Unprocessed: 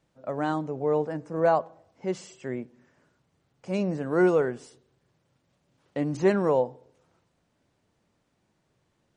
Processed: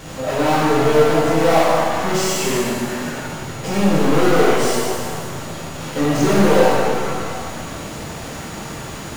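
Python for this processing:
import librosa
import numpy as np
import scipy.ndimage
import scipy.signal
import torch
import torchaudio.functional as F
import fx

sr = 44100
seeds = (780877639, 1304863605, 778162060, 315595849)

y = fx.power_curve(x, sr, exponent=0.35)
y = y + 10.0 ** (-48.0 / 20.0) * np.sin(2.0 * np.pi * 6800.0 * np.arange(len(y)) / sr)
y = fx.rev_shimmer(y, sr, seeds[0], rt60_s=1.8, semitones=7, shimmer_db=-8, drr_db=-8.0)
y = y * 10.0 ** (-6.5 / 20.0)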